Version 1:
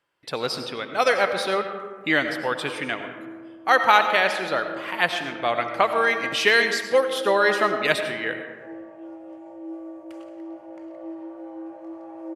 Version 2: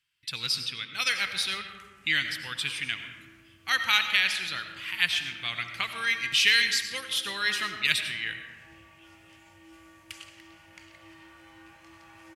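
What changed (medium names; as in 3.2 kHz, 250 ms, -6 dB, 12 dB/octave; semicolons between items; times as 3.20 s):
first sound +11.5 dB; second sound: remove band-pass filter 360 Hz, Q 1.5; master: add FFT filter 100 Hz 0 dB, 600 Hz -29 dB, 2.6 kHz +3 dB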